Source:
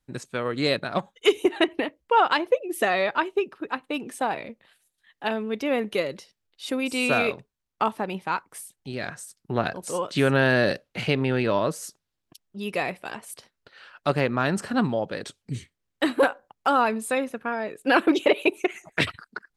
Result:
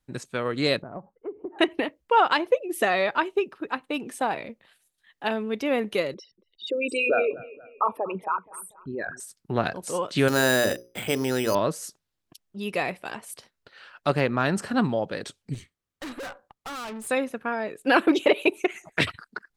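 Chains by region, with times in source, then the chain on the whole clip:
0:00.82–0:01.59: Bessel low-pass filter 750 Hz, order 6 + downward compressor 3 to 1, threshold −35 dBFS
0:06.14–0:09.20: spectral envelope exaggerated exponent 3 + notch filter 4,700 Hz, Q 17 + bucket-brigade delay 237 ms, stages 4,096, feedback 44%, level −19 dB
0:10.28–0:11.55: parametric band 150 Hz −9.5 dB 0.6 octaves + mains-hum notches 60/120/180/240/300/360/420/480/540 Hz + bad sample-rate conversion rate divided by 8×, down filtered, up hold
0:15.54–0:17.07: parametric band 1,200 Hz +5.5 dB 0.23 octaves + tube saturation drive 34 dB, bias 0.55
whole clip: no processing

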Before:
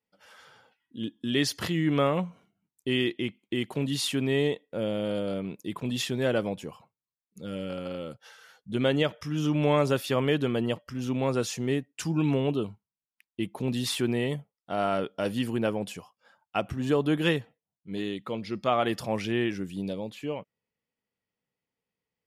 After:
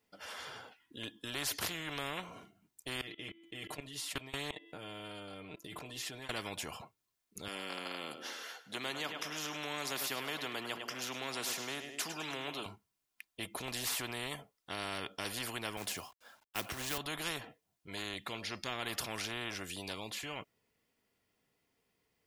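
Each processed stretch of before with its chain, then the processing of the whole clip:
0:03.01–0:06.31: comb filter 6.6 ms, depth 67% + hum removal 334.5 Hz, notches 14 + output level in coarse steps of 23 dB
0:07.48–0:12.66: high-pass filter 240 Hz 24 dB per octave + parametric band 8,900 Hz −5.5 dB 0.22 octaves + repeating echo 103 ms, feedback 43%, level −16 dB
0:15.77–0:16.98: log-companded quantiser 6 bits + multiband upward and downward expander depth 40%
whole clip: dynamic equaliser 7,800 Hz, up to −5 dB, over −48 dBFS, Q 0.75; comb filter 2.9 ms, depth 36%; every bin compressed towards the loudest bin 4 to 1; level −7.5 dB

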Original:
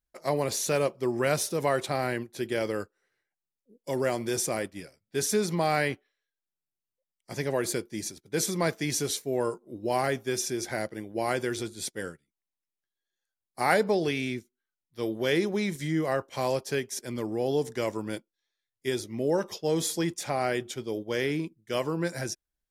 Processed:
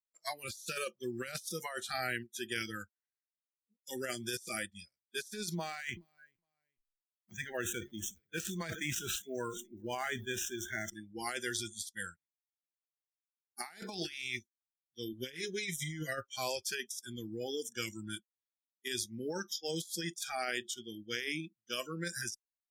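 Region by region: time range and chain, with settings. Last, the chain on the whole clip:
0:05.55–0:10.90: running median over 9 samples + repeating echo 417 ms, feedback 26%, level −19 dB + level that may fall only so fast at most 96 dB per second
0:13.73–0:14.37: ceiling on every frequency bin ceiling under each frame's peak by 13 dB + parametric band 340 Hz +8 dB 0.24 octaves
0:15.12–0:16.34: parametric band 760 Hz −10 dB 0.32 octaves + comb filter 7.2 ms, depth 73%
whole clip: noise reduction from a noise print of the clip's start 27 dB; guitar amp tone stack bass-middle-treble 5-5-5; compressor whose output falls as the input rises −45 dBFS, ratio −0.5; level +7.5 dB

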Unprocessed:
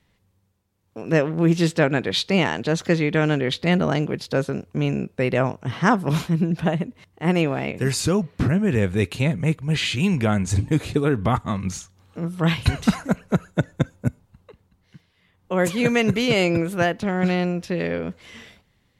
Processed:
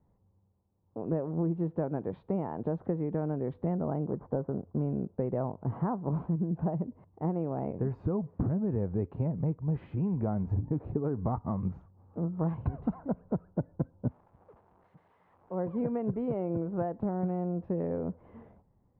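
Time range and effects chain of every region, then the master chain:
0:04.07–0:04.80: variable-slope delta modulation 32 kbit/s + Savitzky-Golay smoothing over 41 samples
0:14.07–0:15.57: spike at every zero crossing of −17.5 dBFS + high shelf with overshoot 7,500 Hz +11.5 dB, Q 1.5
whole clip: downward compressor, threshold −24 dBFS; Chebyshev low-pass filter 920 Hz, order 3; level −2.5 dB

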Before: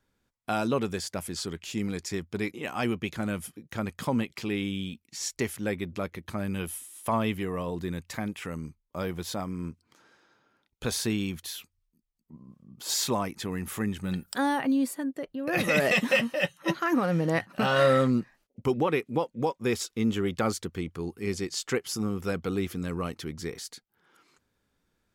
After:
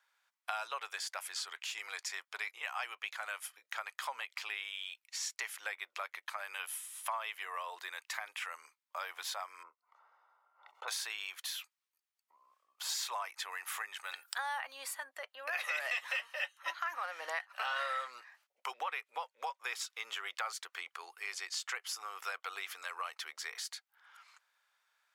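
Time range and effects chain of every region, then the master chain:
0:09.63–0:10.88: Savitzky-Golay smoothing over 65 samples + background raised ahead of every attack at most 140 dB per second
whole clip: Bessel high-pass filter 1,300 Hz, order 6; high-shelf EQ 3,200 Hz −10.5 dB; downward compressor 3 to 1, threshold −47 dBFS; level +9 dB

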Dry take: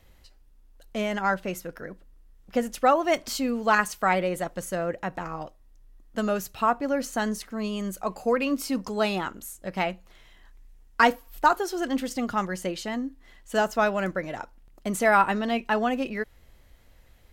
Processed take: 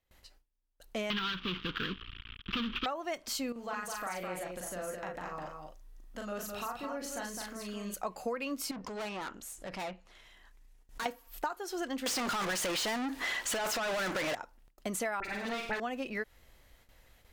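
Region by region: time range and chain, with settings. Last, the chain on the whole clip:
0:01.10–0:02.86: variable-slope delta modulation 16 kbit/s + leveller curve on the samples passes 5 + drawn EQ curve 240 Hz 0 dB, 430 Hz −7 dB, 630 Hz −29 dB, 1,200 Hz +2 dB, 2,000 Hz −6 dB, 3,300 Hz +11 dB, 5,700 Hz −6 dB, 9,000 Hz −24 dB, 14,000 Hz −5 dB
0:03.52–0:07.94: downward compressor 2.5 to 1, threshold −41 dBFS + double-tracking delay 39 ms −3 dB + single-tap delay 209 ms −5 dB
0:08.71–0:11.06: treble cut that deepens with the level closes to 2,100 Hz, closed at −22 dBFS + tube saturation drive 34 dB, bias 0.35 + background raised ahead of every attack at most 130 dB per second
0:12.06–0:14.35: compressor whose output falls as the input rises −28 dBFS, ratio −0.5 + mid-hump overdrive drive 36 dB, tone 6,000 Hz, clips at −16 dBFS
0:15.20–0:15.80: lower of the sound and its delayed copy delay 0.47 ms + all-pass dispersion highs, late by 45 ms, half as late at 2,000 Hz + flutter between parallel walls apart 8.4 metres, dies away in 0.5 s
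whole clip: noise gate with hold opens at −47 dBFS; low-shelf EQ 370 Hz −7 dB; downward compressor 10 to 1, threshold −32 dBFS

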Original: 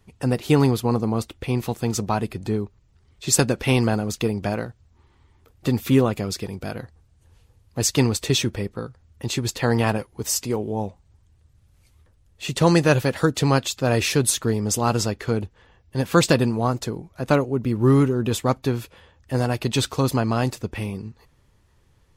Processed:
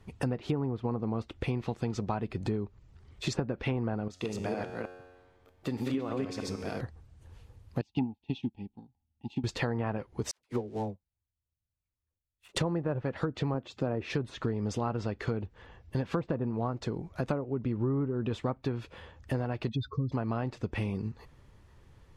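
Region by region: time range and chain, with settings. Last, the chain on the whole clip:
0:04.08–0:06.81: delay that plays each chunk backwards 155 ms, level −0.5 dB + low-shelf EQ 130 Hz −10 dB + tuned comb filter 91 Hz, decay 1.4 s, mix 70%
0:07.81–0:09.44: drawn EQ curve 130 Hz 0 dB, 250 Hz +10 dB, 560 Hz −16 dB, 830 Hz +13 dB, 1,300 Hz −29 dB, 2,800 Hz +6 dB, 7,400 Hz −15 dB + expander for the loud parts 2.5 to 1, over −29 dBFS
0:10.31–0:12.56: gap after every zero crossing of 0.098 ms + all-pass dispersion lows, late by 73 ms, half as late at 650 Hz + expander for the loud parts 2.5 to 1, over −44 dBFS
0:13.54–0:14.10: high-pass filter 240 Hz 6 dB per octave + tilt shelving filter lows +6 dB, about 680 Hz
0:19.69–0:20.12: expanding power law on the bin magnitudes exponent 2.5 + phaser with its sweep stopped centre 2,900 Hz, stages 6
whole clip: treble cut that deepens with the level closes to 1,100 Hz, closed at −13.5 dBFS; high-shelf EQ 4,400 Hz −9 dB; downward compressor 6 to 1, threshold −32 dBFS; level +3 dB

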